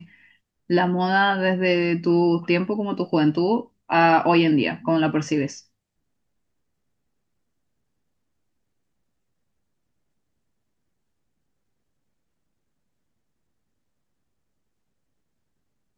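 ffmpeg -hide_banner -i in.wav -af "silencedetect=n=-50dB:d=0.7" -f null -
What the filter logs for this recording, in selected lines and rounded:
silence_start: 5.63
silence_end: 15.98 | silence_duration: 10.34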